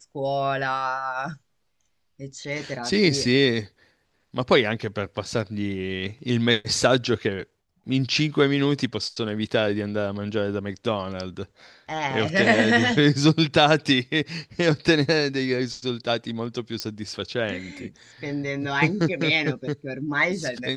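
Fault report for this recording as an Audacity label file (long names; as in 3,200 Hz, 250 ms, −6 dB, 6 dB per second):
16.800000	16.800000	click −13 dBFS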